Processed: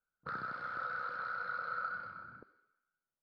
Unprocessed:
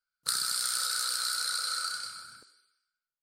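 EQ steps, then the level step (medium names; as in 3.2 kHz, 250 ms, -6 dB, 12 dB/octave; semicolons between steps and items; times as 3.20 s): Bessel low-pass 990 Hz, order 4; peaking EQ 190 Hz +2.5 dB 0.4 oct; +6.5 dB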